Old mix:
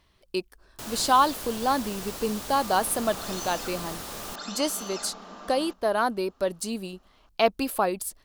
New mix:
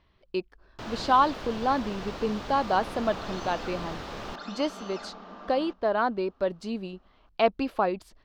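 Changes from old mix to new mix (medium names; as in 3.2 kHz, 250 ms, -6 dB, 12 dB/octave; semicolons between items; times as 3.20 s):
first sound +3.5 dB; master: add distance through air 220 m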